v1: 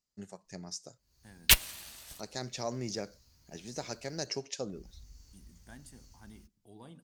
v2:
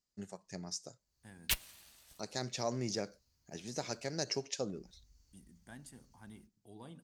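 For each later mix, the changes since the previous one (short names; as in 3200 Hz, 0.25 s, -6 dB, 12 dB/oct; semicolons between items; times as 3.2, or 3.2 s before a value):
background -12.0 dB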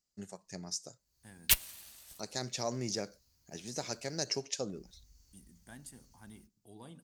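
background +3.0 dB; master: add high shelf 6900 Hz +8 dB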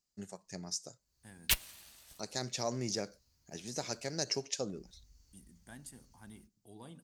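background: add high shelf 7300 Hz -7 dB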